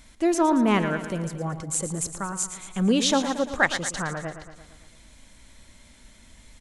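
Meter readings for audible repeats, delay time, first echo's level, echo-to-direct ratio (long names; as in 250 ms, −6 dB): 6, 114 ms, −11.0 dB, −9.0 dB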